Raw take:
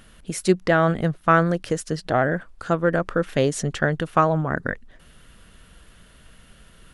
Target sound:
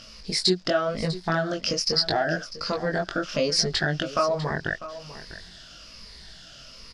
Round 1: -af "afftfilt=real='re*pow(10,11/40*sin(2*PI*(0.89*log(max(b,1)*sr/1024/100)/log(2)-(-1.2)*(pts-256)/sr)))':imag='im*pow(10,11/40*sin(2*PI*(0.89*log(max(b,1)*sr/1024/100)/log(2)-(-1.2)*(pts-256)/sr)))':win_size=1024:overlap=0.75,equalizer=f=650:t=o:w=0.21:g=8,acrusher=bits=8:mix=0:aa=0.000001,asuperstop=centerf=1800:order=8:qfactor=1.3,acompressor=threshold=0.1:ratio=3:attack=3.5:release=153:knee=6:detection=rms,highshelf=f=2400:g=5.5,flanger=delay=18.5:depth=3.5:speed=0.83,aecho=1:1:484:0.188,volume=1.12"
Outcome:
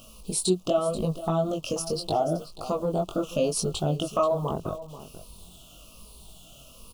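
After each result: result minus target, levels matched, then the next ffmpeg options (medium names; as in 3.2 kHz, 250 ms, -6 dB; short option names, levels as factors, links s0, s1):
2 kHz band -17.0 dB; 4 kHz band -8.5 dB; echo 164 ms early
-af "afftfilt=real='re*pow(10,11/40*sin(2*PI*(0.89*log(max(b,1)*sr/1024/100)/log(2)-(-1.2)*(pts-256)/sr)))':imag='im*pow(10,11/40*sin(2*PI*(0.89*log(max(b,1)*sr/1024/100)/log(2)-(-1.2)*(pts-256)/sr)))':win_size=1024:overlap=0.75,equalizer=f=650:t=o:w=0.21:g=8,acrusher=bits=8:mix=0:aa=0.000001,acompressor=threshold=0.1:ratio=3:attack=3.5:release=153:knee=6:detection=rms,highshelf=f=2400:g=5.5,flanger=delay=18.5:depth=3.5:speed=0.83,aecho=1:1:484:0.188,volume=1.12"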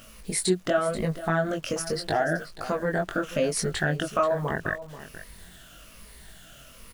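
4 kHz band -9.0 dB; echo 164 ms early
-af "afftfilt=real='re*pow(10,11/40*sin(2*PI*(0.89*log(max(b,1)*sr/1024/100)/log(2)-(-1.2)*(pts-256)/sr)))':imag='im*pow(10,11/40*sin(2*PI*(0.89*log(max(b,1)*sr/1024/100)/log(2)-(-1.2)*(pts-256)/sr)))':win_size=1024:overlap=0.75,equalizer=f=650:t=o:w=0.21:g=8,acrusher=bits=8:mix=0:aa=0.000001,acompressor=threshold=0.1:ratio=3:attack=3.5:release=153:knee=6:detection=rms,lowpass=f=5000:t=q:w=7.7,highshelf=f=2400:g=5.5,flanger=delay=18.5:depth=3.5:speed=0.83,aecho=1:1:484:0.188,volume=1.12"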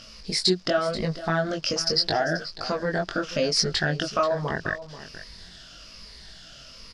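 echo 164 ms early
-af "afftfilt=real='re*pow(10,11/40*sin(2*PI*(0.89*log(max(b,1)*sr/1024/100)/log(2)-(-1.2)*(pts-256)/sr)))':imag='im*pow(10,11/40*sin(2*PI*(0.89*log(max(b,1)*sr/1024/100)/log(2)-(-1.2)*(pts-256)/sr)))':win_size=1024:overlap=0.75,equalizer=f=650:t=o:w=0.21:g=8,acrusher=bits=8:mix=0:aa=0.000001,acompressor=threshold=0.1:ratio=3:attack=3.5:release=153:knee=6:detection=rms,lowpass=f=5000:t=q:w=7.7,highshelf=f=2400:g=5.5,flanger=delay=18.5:depth=3.5:speed=0.83,aecho=1:1:648:0.188,volume=1.12"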